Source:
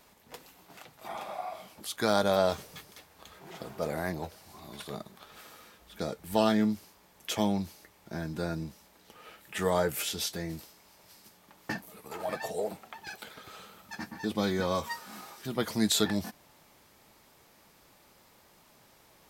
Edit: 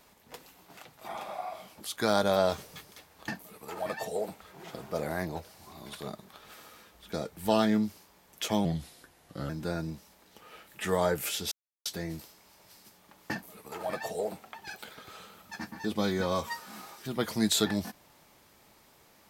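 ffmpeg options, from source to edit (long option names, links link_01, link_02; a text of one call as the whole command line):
ffmpeg -i in.wav -filter_complex "[0:a]asplit=6[link_01][link_02][link_03][link_04][link_05][link_06];[link_01]atrim=end=3.282[link_07];[link_02]atrim=start=11.708:end=12.842[link_08];[link_03]atrim=start=3.278:end=7.524[link_09];[link_04]atrim=start=7.52:end=8.23,asetpts=PTS-STARTPTS,asetrate=37044,aresample=44100[link_10];[link_05]atrim=start=8.226:end=10.25,asetpts=PTS-STARTPTS,afade=type=out:start_time=2.02:duration=0.004:curve=hsin,apad=pad_dur=0.34[link_11];[link_06]atrim=start=10.25,asetpts=PTS-STARTPTS,afade=type=in:duration=0.004:curve=hsin[link_12];[link_07][link_08]acrossfade=duration=0.004:curve1=hsin:curve2=hsin[link_13];[link_13][link_09]acrossfade=duration=0.004:curve1=hsin:curve2=hsin[link_14];[link_14][link_10]acrossfade=duration=0.004:curve1=hsin:curve2=hsin[link_15];[link_11][link_12]concat=n=2:v=0:a=1[link_16];[link_15][link_16]acrossfade=duration=0.004:curve1=hsin:curve2=hsin" out.wav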